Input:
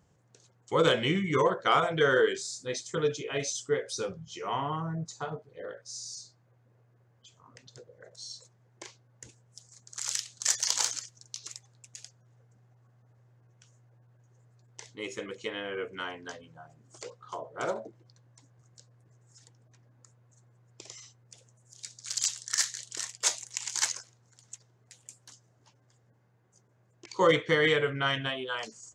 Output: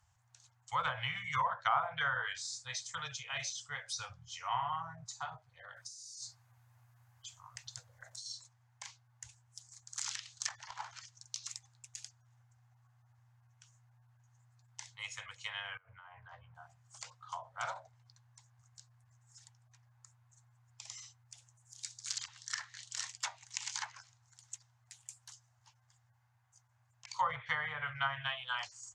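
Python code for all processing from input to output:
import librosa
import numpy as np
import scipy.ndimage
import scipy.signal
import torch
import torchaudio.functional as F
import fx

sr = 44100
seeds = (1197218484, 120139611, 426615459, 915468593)

y = fx.chain(x, sr, fx.high_shelf(hz=7700.0, db=12.0),
    fx.over_compress(threshold_db=-46.0, ratio=-1.0), at=(5.76, 8.26))
y = fx.chain(y, sr, fx.lowpass(hz=1300.0, slope=12),
    fx.over_compress(threshold_db=-48.0, ratio=-1.0), at=(15.77, 16.55))
y = scipy.signal.sosfilt(scipy.signal.cheby1(3, 1.0, [110.0, 810.0], 'bandstop', fs=sr, output='sos'), y)
y = fx.env_lowpass_down(y, sr, base_hz=1100.0, full_db=-25.0)
y = fx.high_shelf(y, sr, hz=11000.0, db=3.5)
y = y * librosa.db_to_amplitude(-1.5)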